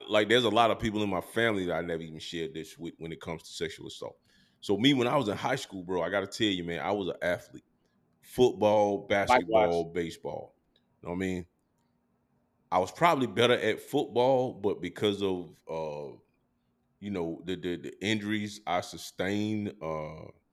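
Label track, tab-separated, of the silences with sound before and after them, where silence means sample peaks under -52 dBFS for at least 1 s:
11.450000	12.720000	silence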